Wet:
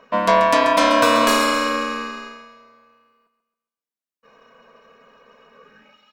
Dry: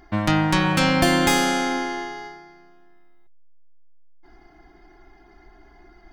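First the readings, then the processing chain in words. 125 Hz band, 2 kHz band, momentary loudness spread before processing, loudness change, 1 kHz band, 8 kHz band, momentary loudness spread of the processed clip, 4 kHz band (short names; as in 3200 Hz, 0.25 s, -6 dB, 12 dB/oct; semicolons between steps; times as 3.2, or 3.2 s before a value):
-14.5 dB, +2.5 dB, 13 LU, +3.5 dB, +7.0 dB, 0.0 dB, 14 LU, +2.0 dB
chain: high-pass sweep 140 Hz -> 2500 Hz, 5.48–5.98; ring modulator 820 Hz; resonant low shelf 150 Hz -12 dB, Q 3; on a send: feedback echo 0.135 s, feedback 43%, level -10 dB; on the sum: gain +3 dB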